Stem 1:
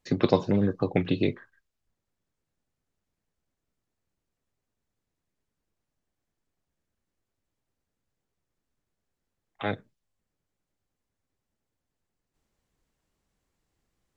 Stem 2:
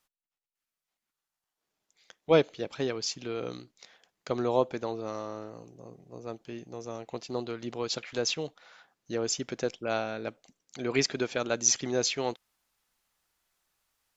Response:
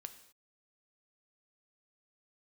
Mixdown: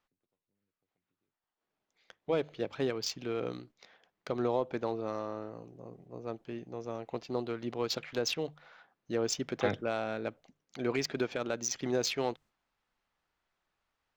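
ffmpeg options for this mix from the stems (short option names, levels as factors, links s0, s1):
-filter_complex "[0:a]acompressor=threshold=0.0631:ratio=6,volume=0.794[s0];[1:a]alimiter=limit=0.106:level=0:latency=1:release=143,adynamicsmooth=sensitivity=4:basefreq=3300,bandreject=f=50:t=h:w=6,bandreject=f=100:t=h:w=6,bandreject=f=150:t=h:w=6,volume=1,asplit=2[s1][s2];[s2]apad=whole_len=624560[s3];[s0][s3]sidechaingate=range=0.00158:threshold=0.00178:ratio=16:detection=peak[s4];[s4][s1]amix=inputs=2:normalize=0"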